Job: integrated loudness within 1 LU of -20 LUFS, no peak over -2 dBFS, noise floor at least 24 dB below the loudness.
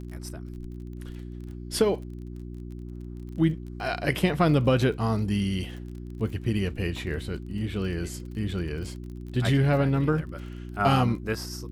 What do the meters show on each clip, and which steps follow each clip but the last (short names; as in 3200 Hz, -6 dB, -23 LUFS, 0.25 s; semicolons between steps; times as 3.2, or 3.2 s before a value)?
ticks 32/s; hum 60 Hz; harmonics up to 360 Hz; hum level -35 dBFS; loudness -27.0 LUFS; peak -7.5 dBFS; loudness target -20.0 LUFS
-> de-click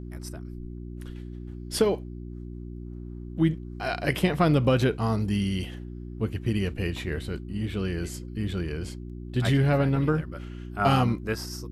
ticks 0.085/s; hum 60 Hz; harmonics up to 360 Hz; hum level -35 dBFS
-> de-hum 60 Hz, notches 6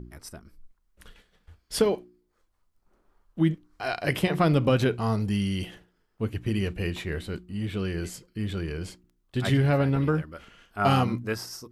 hum none; loudness -27.5 LUFS; peak -8.5 dBFS; loudness target -20.0 LUFS
-> gain +7.5 dB; limiter -2 dBFS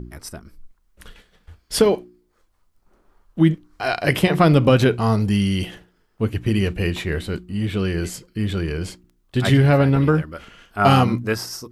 loudness -20.0 LUFS; peak -2.0 dBFS; noise floor -64 dBFS